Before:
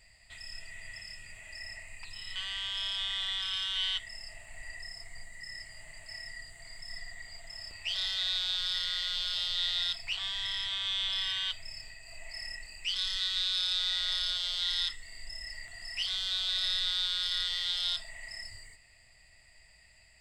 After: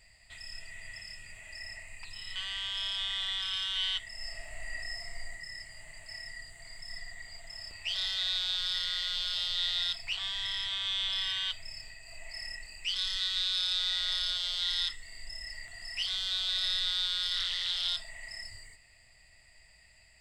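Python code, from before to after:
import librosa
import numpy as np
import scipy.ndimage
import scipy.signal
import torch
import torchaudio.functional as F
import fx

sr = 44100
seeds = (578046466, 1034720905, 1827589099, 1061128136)

y = fx.reverb_throw(x, sr, start_s=4.14, length_s=1.17, rt60_s=0.89, drr_db=-2.0)
y = fx.doppler_dist(y, sr, depth_ms=0.32, at=(17.35, 17.88))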